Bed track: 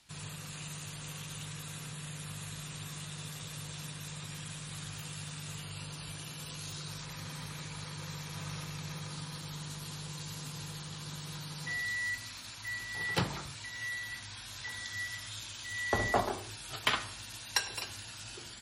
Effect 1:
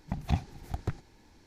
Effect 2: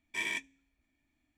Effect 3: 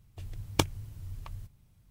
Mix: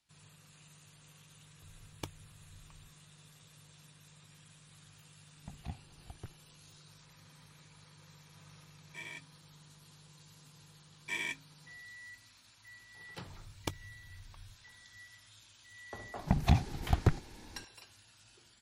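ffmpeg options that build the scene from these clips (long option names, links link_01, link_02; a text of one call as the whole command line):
ffmpeg -i bed.wav -i cue0.wav -i cue1.wav -i cue2.wav -filter_complex "[3:a]asplit=2[link_01][link_02];[1:a]asplit=2[link_03][link_04];[2:a]asplit=2[link_05][link_06];[0:a]volume=-16dB[link_07];[link_05]equalizer=frequency=650:width_type=o:width=0.77:gain=5.5[link_08];[link_04]alimiter=level_in=18.5dB:limit=-1dB:release=50:level=0:latency=1[link_09];[link_01]atrim=end=1.9,asetpts=PTS-STARTPTS,volume=-17dB,afade=type=in:duration=0.004:curve=hsin,afade=type=out:start_time=1.896:duration=0.004:curve=hsin,adelay=1440[link_10];[link_03]atrim=end=1.46,asetpts=PTS-STARTPTS,volume=-15dB,afade=type=in:duration=0.004:curve=hsin,afade=type=out:start_time=1.456:duration=0.004:curve=hsin,adelay=5360[link_11];[link_08]atrim=end=1.37,asetpts=PTS-STARTPTS,volume=-12dB,afade=type=in:duration=0.004:curve=hsin,afade=type=out:start_time=1.366:duration=0.004:curve=hsin,adelay=8800[link_12];[link_06]atrim=end=1.37,asetpts=PTS-STARTPTS,volume=-2.5dB,afade=type=in:duration=0.004:curve=hsin,afade=type=out:start_time=1.366:duration=0.004:curve=hsin,adelay=10940[link_13];[link_02]atrim=end=1.9,asetpts=PTS-STARTPTS,volume=-12dB,afade=type=in:duration=0.004:curve=hsin,afade=type=out:start_time=1.896:duration=0.004:curve=hsin,adelay=13080[link_14];[link_09]atrim=end=1.46,asetpts=PTS-STARTPTS,volume=-12dB,afade=type=in:duration=0.004:curve=hsin,afade=type=out:start_time=1.456:duration=0.004:curve=hsin,adelay=16190[link_15];[link_07][link_10][link_11][link_12][link_13][link_14][link_15]amix=inputs=7:normalize=0" out.wav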